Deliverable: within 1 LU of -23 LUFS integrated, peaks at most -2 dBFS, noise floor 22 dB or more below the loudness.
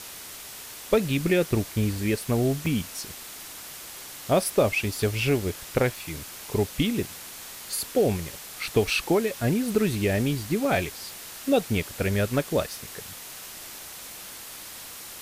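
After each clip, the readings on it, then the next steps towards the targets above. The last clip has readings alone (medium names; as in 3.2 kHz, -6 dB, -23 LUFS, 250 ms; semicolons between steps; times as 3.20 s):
dropouts 2; longest dropout 2.0 ms; noise floor -41 dBFS; noise floor target -48 dBFS; loudness -26.0 LUFS; peak level -7.0 dBFS; loudness target -23.0 LUFS
-> interpolate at 2.66/9.75 s, 2 ms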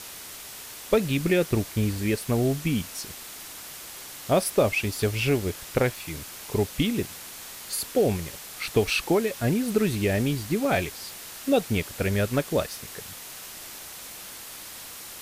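dropouts 0; noise floor -41 dBFS; noise floor target -48 dBFS
-> noise reduction 7 dB, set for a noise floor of -41 dBFS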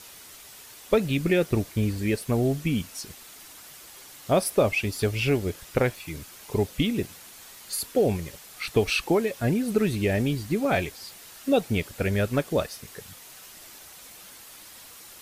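noise floor -47 dBFS; noise floor target -48 dBFS
-> noise reduction 6 dB, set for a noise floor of -47 dBFS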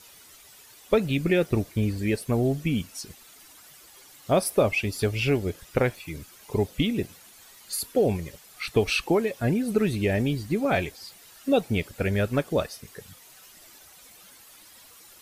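noise floor -51 dBFS; loudness -26.0 LUFS; peak level -7.5 dBFS; loudness target -23.0 LUFS
-> trim +3 dB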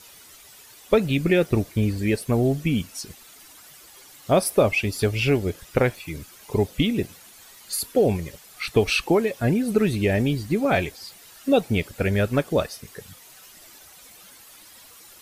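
loudness -23.0 LUFS; peak level -4.5 dBFS; noise floor -48 dBFS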